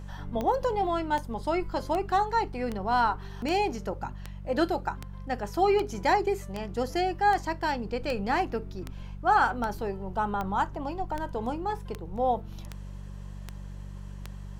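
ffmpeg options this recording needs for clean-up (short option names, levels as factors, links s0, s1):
-af "adeclick=t=4,bandreject=f=48.1:t=h:w=4,bandreject=f=96.2:t=h:w=4,bandreject=f=144.3:t=h:w=4,bandreject=f=192.4:t=h:w=4"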